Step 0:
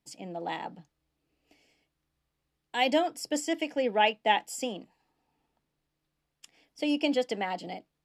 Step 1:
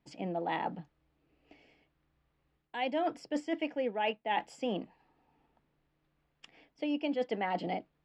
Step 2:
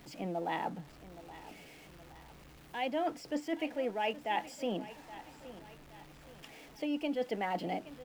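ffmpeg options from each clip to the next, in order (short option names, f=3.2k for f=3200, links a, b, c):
-af "lowpass=2.6k,areverse,acompressor=threshold=-35dB:ratio=8,areverse,volume=5.5dB"
-af "aeval=exprs='val(0)+0.5*0.00398*sgn(val(0))':c=same,aecho=1:1:821|1642|2463|3284:0.158|0.0697|0.0307|0.0135,volume=-2dB"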